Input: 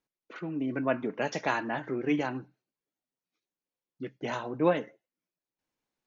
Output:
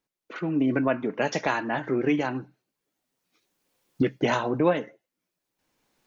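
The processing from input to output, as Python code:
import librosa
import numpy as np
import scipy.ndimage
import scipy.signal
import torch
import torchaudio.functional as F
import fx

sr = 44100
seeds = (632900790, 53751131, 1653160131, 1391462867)

y = fx.recorder_agc(x, sr, target_db=-17.0, rise_db_per_s=11.0, max_gain_db=30)
y = y * 10.0 ** (2.5 / 20.0)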